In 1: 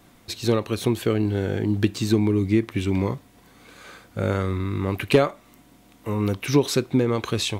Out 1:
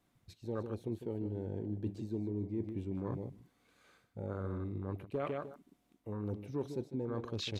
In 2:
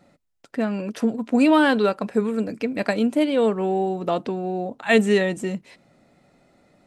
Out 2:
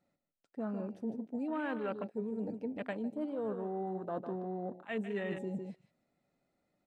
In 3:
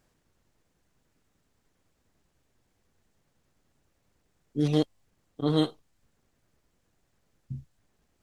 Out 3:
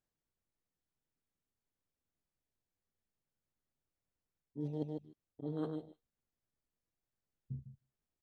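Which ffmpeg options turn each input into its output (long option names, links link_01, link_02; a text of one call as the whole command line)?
ffmpeg -i in.wav -af "aecho=1:1:153|306:0.282|0.0451,areverse,acompressor=threshold=-30dB:ratio=5,areverse,aresample=32000,aresample=44100,afwtdn=0.0126,volume=-5.5dB" out.wav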